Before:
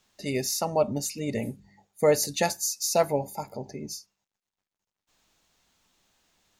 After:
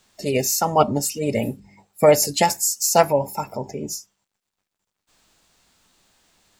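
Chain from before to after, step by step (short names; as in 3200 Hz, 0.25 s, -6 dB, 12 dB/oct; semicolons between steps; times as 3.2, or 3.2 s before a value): formant shift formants +2 st; gain +7.5 dB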